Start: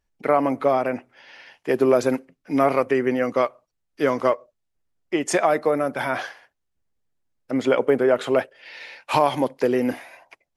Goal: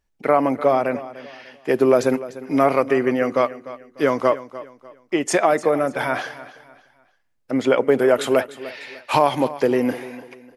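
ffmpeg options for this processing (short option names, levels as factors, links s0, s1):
-filter_complex "[0:a]asettb=1/sr,asplit=3[s0][s1][s2];[s0]atrim=end=7.994[s3];[s1]atrim=start=7.99:end=8.41,asetpts=PTS-STARTPTS,afade=t=in:d=0.004:c=qsin,afade=t=out:st=0.416:d=0.004:c=qsin,aemphasis=mode=production:type=50kf[s4];[s2]atrim=start=8.406[s5];[s3][s4]acrossfade=d=0.004:c1=hsin:c2=qsin[s6];[s6][s5]acrossfade=d=0.004:c1=qsin:c2=hsin,aecho=1:1:298|596|894:0.158|0.0523|0.0173,volume=1.26"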